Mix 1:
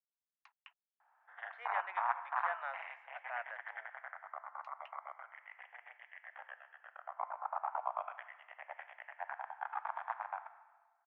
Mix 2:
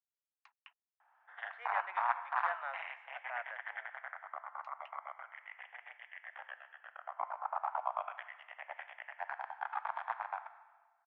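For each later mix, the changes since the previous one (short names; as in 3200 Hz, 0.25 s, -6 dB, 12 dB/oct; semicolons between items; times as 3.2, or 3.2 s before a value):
background: remove air absorption 340 m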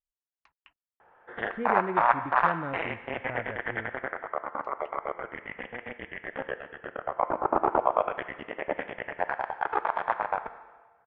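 background +10.0 dB; master: remove steep high-pass 710 Hz 48 dB/oct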